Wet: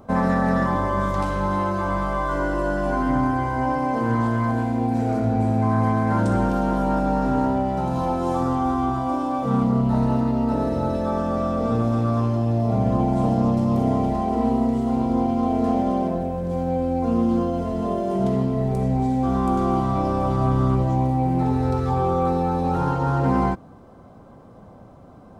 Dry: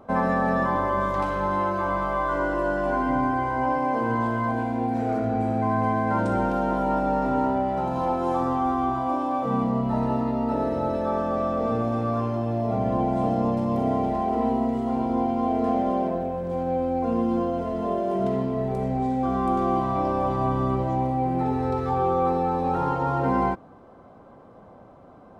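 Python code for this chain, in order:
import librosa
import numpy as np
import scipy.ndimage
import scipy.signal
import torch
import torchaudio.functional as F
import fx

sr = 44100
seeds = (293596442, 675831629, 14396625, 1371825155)

y = fx.bass_treble(x, sr, bass_db=8, treble_db=10)
y = fx.doppler_dist(y, sr, depth_ms=0.12)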